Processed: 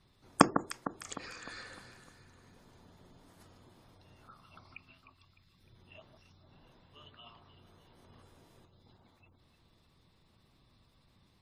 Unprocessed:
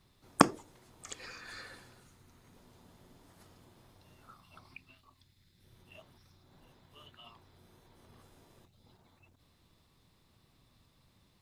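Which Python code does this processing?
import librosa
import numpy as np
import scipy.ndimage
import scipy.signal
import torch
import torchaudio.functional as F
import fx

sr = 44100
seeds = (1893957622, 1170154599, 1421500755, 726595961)

y = fx.echo_alternate(x, sr, ms=152, hz=1600.0, feedback_pct=68, wet_db=-9.0)
y = fx.spec_gate(y, sr, threshold_db=-30, keep='strong')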